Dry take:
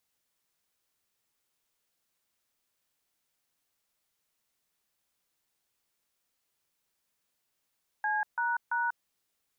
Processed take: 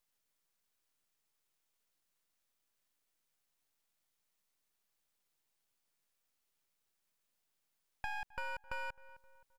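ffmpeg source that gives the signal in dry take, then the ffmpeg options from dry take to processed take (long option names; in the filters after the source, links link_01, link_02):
-f lavfi -i "aevalsrc='0.0335*clip(min(mod(t,0.337),0.191-mod(t,0.337))/0.002,0,1)*(eq(floor(t/0.337),0)*(sin(2*PI*852*mod(t,0.337))+sin(2*PI*1633*mod(t,0.337)))+eq(floor(t/0.337),1)*(sin(2*PI*941*mod(t,0.337))+sin(2*PI*1477*mod(t,0.337)))+eq(floor(t/0.337),2)*(sin(2*PI*941*mod(t,0.337))+sin(2*PI*1477*mod(t,0.337))))':duration=1.011:sample_rate=44100"
-filter_complex "[0:a]aeval=exprs='max(val(0),0)':channel_layout=same,asplit=2[link_01][link_02];[link_02]adelay=262,lowpass=frequency=1600:poles=1,volume=-21.5dB,asplit=2[link_03][link_04];[link_04]adelay=262,lowpass=frequency=1600:poles=1,volume=0.44,asplit=2[link_05][link_06];[link_06]adelay=262,lowpass=frequency=1600:poles=1,volume=0.44[link_07];[link_01][link_03][link_05][link_07]amix=inputs=4:normalize=0,acompressor=threshold=-38dB:ratio=3"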